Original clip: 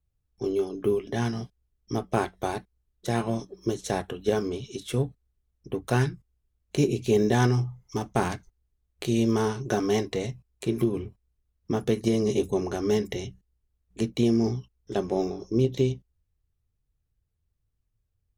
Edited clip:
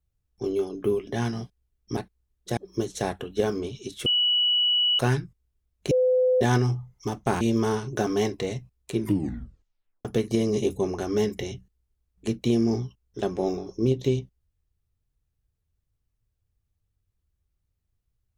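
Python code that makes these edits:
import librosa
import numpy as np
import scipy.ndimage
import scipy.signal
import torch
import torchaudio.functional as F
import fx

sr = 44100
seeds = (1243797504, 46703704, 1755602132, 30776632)

y = fx.edit(x, sr, fx.cut(start_s=1.97, length_s=0.57),
    fx.cut(start_s=3.14, length_s=0.32),
    fx.bleep(start_s=4.95, length_s=0.93, hz=2940.0, db=-19.0),
    fx.bleep(start_s=6.8, length_s=0.5, hz=508.0, db=-17.5),
    fx.cut(start_s=8.3, length_s=0.84),
    fx.tape_stop(start_s=10.71, length_s=1.07), tone=tone)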